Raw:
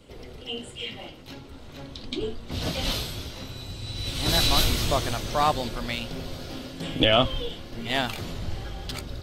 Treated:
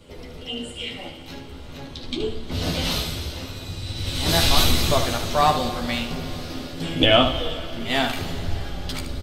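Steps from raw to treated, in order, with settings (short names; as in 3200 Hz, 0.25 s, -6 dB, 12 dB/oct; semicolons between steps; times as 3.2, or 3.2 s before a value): early reflections 12 ms -4.5 dB, 75 ms -7.5 dB; Schroeder reverb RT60 3 s, combs from 30 ms, DRR 11 dB; gain +2 dB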